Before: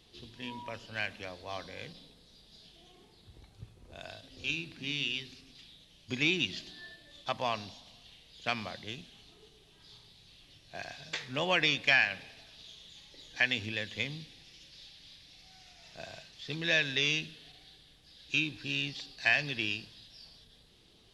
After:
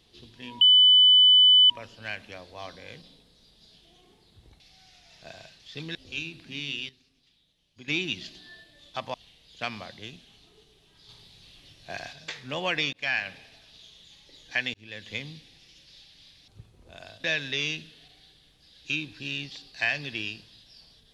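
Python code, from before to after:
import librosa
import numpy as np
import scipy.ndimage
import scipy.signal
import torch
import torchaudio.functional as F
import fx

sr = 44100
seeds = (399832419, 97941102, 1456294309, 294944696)

y = fx.edit(x, sr, fx.insert_tone(at_s=0.61, length_s=1.09, hz=3000.0, db=-13.0),
    fx.swap(start_s=3.51, length_s=0.76, other_s=15.33, other_length_s=1.35),
    fx.clip_gain(start_s=5.21, length_s=0.99, db=-12.0),
    fx.cut(start_s=7.46, length_s=0.53),
    fx.clip_gain(start_s=9.94, length_s=1.04, db=5.0),
    fx.fade_in_span(start_s=11.78, length_s=0.35, curve='qsin'),
    fx.fade_in_span(start_s=13.59, length_s=0.36), tone=tone)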